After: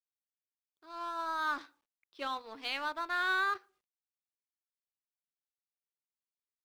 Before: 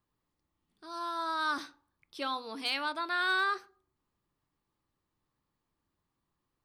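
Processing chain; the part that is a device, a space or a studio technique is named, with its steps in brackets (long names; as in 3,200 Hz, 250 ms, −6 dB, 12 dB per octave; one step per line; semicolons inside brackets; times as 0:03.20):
phone line with mismatched companding (band-pass filter 310–3,400 Hz; mu-law and A-law mismatch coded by A)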